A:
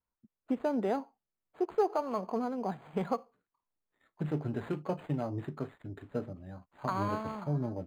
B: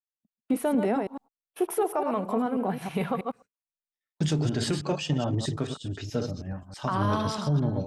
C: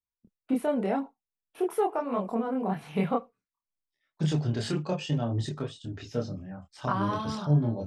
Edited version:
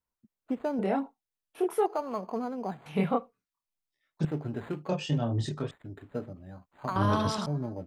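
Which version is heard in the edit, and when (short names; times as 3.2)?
A
0.79–1.86 from C
2.86–4.25 from C
4.89–5.71 from C
6.96–7.46 from B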